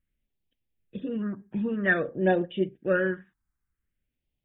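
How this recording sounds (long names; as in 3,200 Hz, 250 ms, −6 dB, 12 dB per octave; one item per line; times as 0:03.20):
phaser sweep stages 4, 0.51 Hz, lowest notch 530–1,300 Hz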